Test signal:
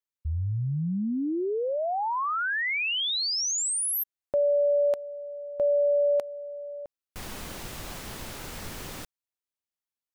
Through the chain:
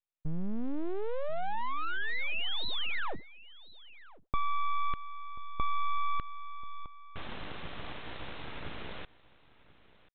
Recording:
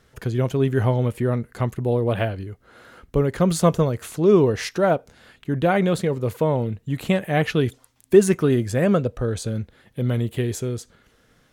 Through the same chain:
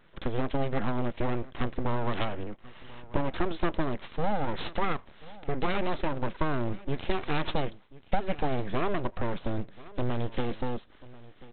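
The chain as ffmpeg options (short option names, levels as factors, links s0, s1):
-af "acompressor=threshold=0.0501:ratio=6:attack=92:release=110:knee=6:detection=rms,aresample=8000,aeval=exprs='abs(val(0))':c=same,aresample=44100,aecho=1:1:1037:0.1"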